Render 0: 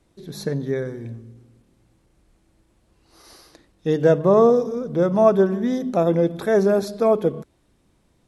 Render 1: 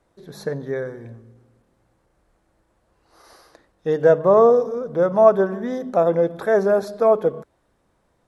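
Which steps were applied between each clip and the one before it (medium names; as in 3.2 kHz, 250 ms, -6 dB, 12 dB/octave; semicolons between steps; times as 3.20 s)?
high-order bell 910 Hz +8.5 dB 2.3 oct; trim -5.5 dB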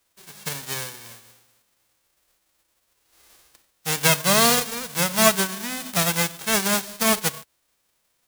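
formants flattened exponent 0.1; trim -4.5 dB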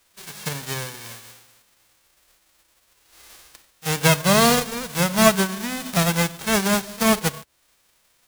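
tilt EQ -1.5 dB/octave; pre-echo 37 ms -22 dB; tape noise reduction on one side only encoder only; trim +2 dB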